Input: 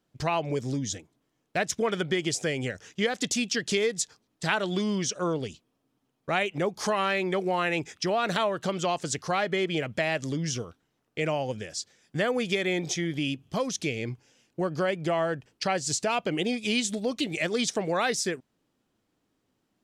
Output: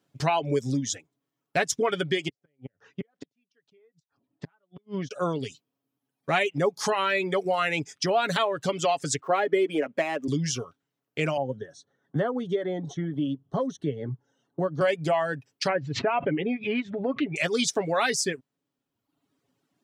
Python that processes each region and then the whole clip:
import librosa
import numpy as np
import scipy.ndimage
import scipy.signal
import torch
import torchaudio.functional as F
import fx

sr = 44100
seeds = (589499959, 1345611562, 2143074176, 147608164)

y = fx.chain(x, sr, fx.highpass(hz=60.0, slope=12),
    fx.gate_flip(shuts_db=-20.0, range_db=-36),
    fx.spacing_loss(db_at_10k=38), at=(2.28, 5.11))
y = fx.chain(y, sr, fx.median_filter(points=9),
    fx.highpass(hz=270.0, slope=24),
    fx.tilt_eq(slope=-3.0), at=(9.2, 10.28))
y = fx.chain(y, sr, fx.moving_average(points=18),
    fx.band_squash(depth_pct=40), at=(11.37, 14.81))
y = fx.chain(y, sr, fx.lowpass(hz=2200.0, slope=24),
    fx.pre_swell(db_per_s=82.0), at=(15.69, 17.36))
y = scipy.signal.sosfilt(scipy.signal.butter(2, 90.0, 'highpass', fs=sr, output='sos'), y)
y = fx.dereverb_blind(y, sr, rt60_s=1.0)
y = y + 0.47 * np.pad(y, (int(7.2 * sr / 1000.0), 0))[:len(y)]
y = y * 10.0 ** (2.0 / 20.0)